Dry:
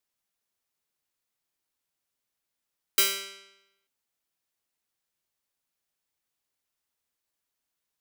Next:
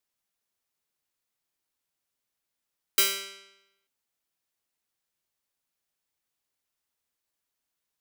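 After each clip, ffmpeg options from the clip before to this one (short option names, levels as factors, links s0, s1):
-af anull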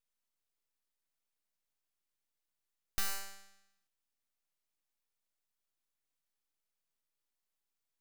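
-filter_complex "[0:a]acrossover=split=2600[s0][s1];[s1]acompressor=threshold=0.0447:ratio=4:attack=1:release=60[s2];[s0][s2]amix=inputs=2:normalize=0,aeval=exprs='abs(val(0))':c=same,volume=0.708"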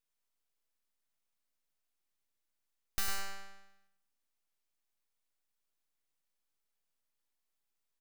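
-filter_complex "[0:a]asplit=2[s0][s1];[s1]adelay=102,lowpass=f=3000:p=1,volume=0.473,asplit=2[s2][s3];[s3]adelay=102,lowpass=f=3000:p=1,volume=0.42,asplit=2[s4][s5];[s5]adelay=102,lowpass=f=3000:p=1,volume=0.42,asplit=2[s6][s7];[s7]adelay=102,lowpass=f=3000:p=1,volume=0.42,asplit=2[s8][s9];[s9]adelay=102,lowpass=f=3000:p=1,volume=0.42[s10];[s0][s2][s4][s6][s8][s10]amix=inputs=6:normalize=0"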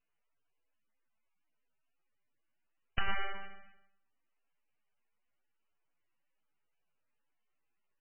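-filter_complex "[0:a]asplit=2[s0][s1];[s1]acrusher=bits=3:mix=0:aa=0.000001,volume=0.501[s2];[s0][s2]amix=inputs=2:normalize=0,volume=1.78" -ar 22050 -c:a libmp3lame -b:a 8k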